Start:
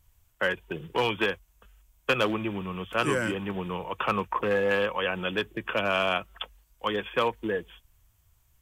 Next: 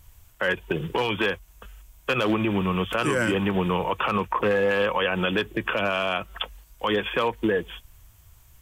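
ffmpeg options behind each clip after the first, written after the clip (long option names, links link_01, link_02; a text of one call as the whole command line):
ffmpeg -i in.wav -filter_complex "[0:a]asplit=2[link_01][link_02];[link_02]acompressor=threshold=-33dB:ratio=6,volume=3dB[link_03];[link_01][link_03]amix=inputs=2:normalize=0,alimiter=limit=-18dB:level=0:latency=1:release=49,volume=4dB" out.wav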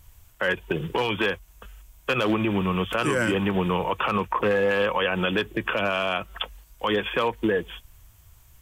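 ffmpeg -i in.wav -af anull out.wav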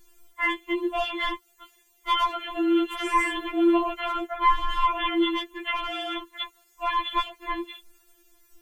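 ffmpeg -i in.wav -af "afftfilt=real='real(if(between(b,1,1008),(2*floor((b-1)/24)+1)*24-b,b),0)':imag='imag(if(between(b,1,1008),(2*floor((b-1)/24)+1)*24-b,b),0)*if(between(b,1,1008),-1,1)':win_size=2048:overlap=0.75,afftfilt=real='re*4*eq(mod(b,16),0)':imag='im*4*eq(mod(b,16),0)':win_size=2048:overlap=0.75" out.wav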